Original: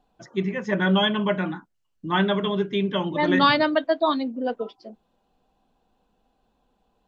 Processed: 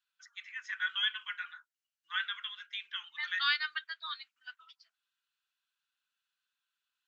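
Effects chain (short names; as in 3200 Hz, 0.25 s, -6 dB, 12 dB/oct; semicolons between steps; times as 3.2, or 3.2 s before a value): elliptic high-pass 1400 Hz, stop band 60 dB; gain -6 dB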